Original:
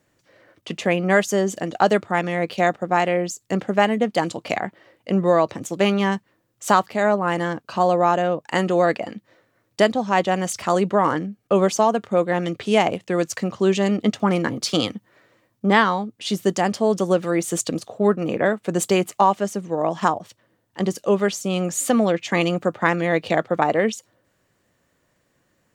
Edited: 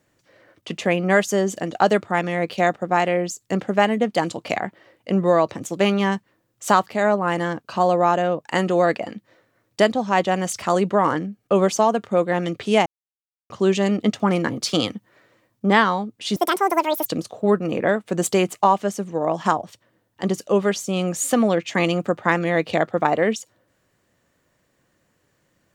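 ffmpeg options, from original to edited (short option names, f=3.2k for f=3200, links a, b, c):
-filter_complex "[0:a]asplit=5[a][b][c][d][e];[a]atrim=end=12.86,asetpts=PTS-STARTPTS,afade=t=out:st=12.856:d=0.004:c=hsin[f];[b]atrim=start=12.86:end=13.5,asetpts=PTS-STARTPTS,volume=0[g];[c]atrim=start=13.5:end=16.364,asetpts=PTS-STARTPTS,afade=t=in:d=0.004:c=hsin[h];[d]atrim=start=16.36:end=17.63,asetpts=PTS-STARTPTS,asetrate=79821,aresample=44100,atrim=end_sample=30943,asetpts=PTS-STARTPTS[i];[e]atrim=start=17.626[j];[f][g][h]concat=n=3:v=0:a=1[k];[k][i]acrossfade=d=0.004:c1=hsin:c2=hsin[l];[l][j]acrossfade=d=0.004:c1=hsin:c2=hsin"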